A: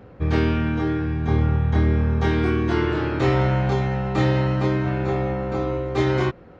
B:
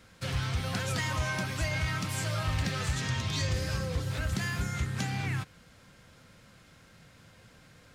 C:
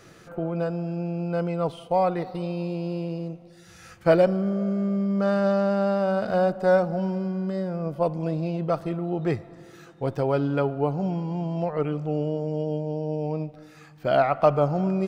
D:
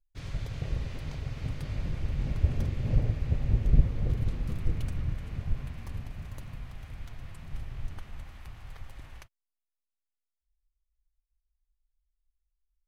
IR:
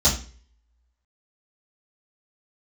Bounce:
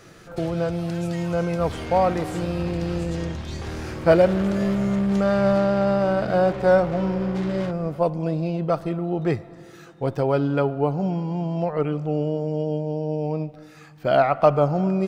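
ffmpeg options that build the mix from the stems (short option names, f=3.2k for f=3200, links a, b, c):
-filter_complex "[0:a]alimiter=limit=-19dB:level=0:latency=1,asoftclip=type=tanh:threshold=-34.5dB,adelay=1400,volume=3dB[a];[1:a]adelay=150,volume=-4dB[b];[2:a]volume=2.5dB[c];[3:a]volume=-18dB[d];[b][d]amix=inputs=2:normalize=0,acompressor=threshold=-36dB:ratio=3,volume=0dB[e];[a][c][e]amix=inputs=3:normalize=0"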